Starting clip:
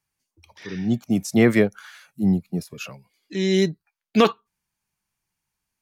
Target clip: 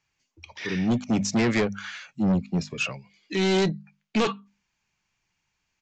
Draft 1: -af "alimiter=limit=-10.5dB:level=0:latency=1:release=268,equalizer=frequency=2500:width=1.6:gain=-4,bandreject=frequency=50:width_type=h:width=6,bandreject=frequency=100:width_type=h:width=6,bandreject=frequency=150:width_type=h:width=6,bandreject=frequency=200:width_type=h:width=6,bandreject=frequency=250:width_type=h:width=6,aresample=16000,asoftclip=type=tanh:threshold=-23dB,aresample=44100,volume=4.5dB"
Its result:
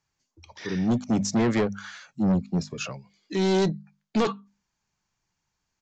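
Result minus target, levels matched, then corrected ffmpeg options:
2,000 Hz band −5.5 dB
-af "alimiter=limit=-10.5dB:level=0:latency=1:release=268,equalizer=frequency=2500:width=1.6:gain=6,bandreject=frequency=50:width_type=h:width=6,bandreject=frequency=100:width_type=h:width=6,bandreject=frequency=150:width_type=h:width=6,bandreject=frequency=200:width_type=h:width=6,bandreject=frequency=250:width_type=h:width=6,aresample=16000,asoftclip=type=tanh:threshold=-23dB,aresample=44100,volume=4.5dB"

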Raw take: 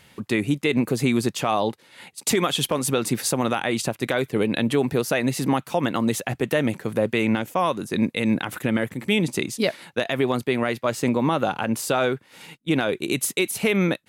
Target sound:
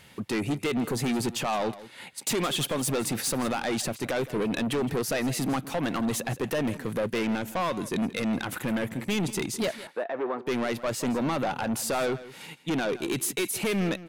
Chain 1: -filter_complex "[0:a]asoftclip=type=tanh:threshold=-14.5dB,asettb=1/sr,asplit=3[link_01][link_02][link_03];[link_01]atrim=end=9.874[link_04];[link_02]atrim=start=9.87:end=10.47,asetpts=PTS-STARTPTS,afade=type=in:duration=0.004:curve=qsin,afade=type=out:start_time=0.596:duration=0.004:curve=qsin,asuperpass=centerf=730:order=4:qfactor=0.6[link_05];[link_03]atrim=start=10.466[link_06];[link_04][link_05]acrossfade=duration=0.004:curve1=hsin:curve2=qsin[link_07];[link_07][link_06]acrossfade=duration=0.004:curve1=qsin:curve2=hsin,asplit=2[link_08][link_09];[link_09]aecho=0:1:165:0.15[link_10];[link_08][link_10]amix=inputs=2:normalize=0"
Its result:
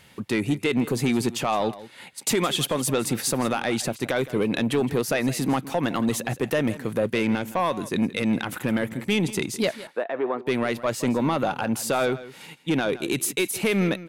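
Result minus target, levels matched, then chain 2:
soft clipping: distortion −9 dB
-filter_complex "[0:a]asoftclip=type=tanh:threshold=-23.5dB,asettb=1/sr,asplit=3[link_01][link_02][link_03];[link_01]atrim=end=9.874[link_04];[link_02]atrim=start=9.87:end=10.47,asetpts=PTS-STARTPTS,afade=type=in:duration=0.004:curve=qsin,afade=type=out:start_time=0.596:duration=0.004:curve=qsin,asuperpass=centerf=730:order=4:qfactor=0.6[link_05];[link_03]atrim=start=10.466[link_06];[link_04][link_05]acrossfade=duration=0.004:curve1=hsin:curve2=qsin[link_07];[link_07][link_06]acrossfade=duration=0.004:curve1=qsin:curve2=hsin,asplit=2[link_08][link_09];[link_09]aecho=0:1:165:0.15[link_10];[link_08][link_10]amix=inputs=2:normalize=0"

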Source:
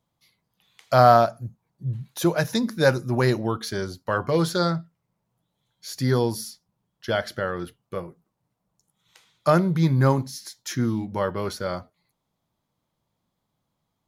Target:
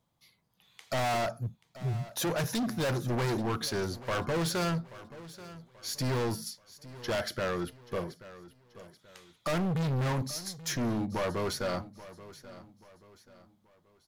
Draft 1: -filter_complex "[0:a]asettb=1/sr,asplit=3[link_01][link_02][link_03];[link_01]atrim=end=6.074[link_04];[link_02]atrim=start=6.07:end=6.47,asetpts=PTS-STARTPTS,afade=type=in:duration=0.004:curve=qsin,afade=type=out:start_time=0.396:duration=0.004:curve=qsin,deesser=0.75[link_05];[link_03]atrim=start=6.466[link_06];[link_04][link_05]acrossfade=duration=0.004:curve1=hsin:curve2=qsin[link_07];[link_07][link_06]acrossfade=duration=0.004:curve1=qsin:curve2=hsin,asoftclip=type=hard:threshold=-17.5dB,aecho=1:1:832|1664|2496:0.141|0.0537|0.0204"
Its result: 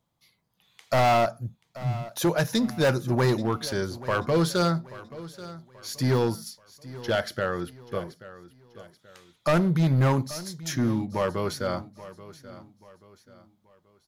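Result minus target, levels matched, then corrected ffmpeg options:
hard clipping: distortion −6 dB
-filter_complex "[0:a]asettb=1/sr,asplit=3[link_01][link_02][link_03];[link_01]atrim=end=6.074[link_04];[link_02]atrim=start=6.07:end=6.47,asetpts=PTS-STARTPTS,afade=type=in:duration=0.004:curve=qsin,afade=type=out:start_time=0.396:duration=0.004:curve=qsin,deesser=0.75[link_05];[link_03]atrim=start=6.466[link_06];[link_04][link_05]acrossfade=duration=0.004:curve1=hsin:curve2=qsin[link_07];[link_07][link_06]acrossfade=duration=0.004:curve1=qsin:curve2=hsin,asoftclip=type=hard:threshold=-28dB,aecho=1:1:832|1664|2496:0.141|0.0537|0.0204"

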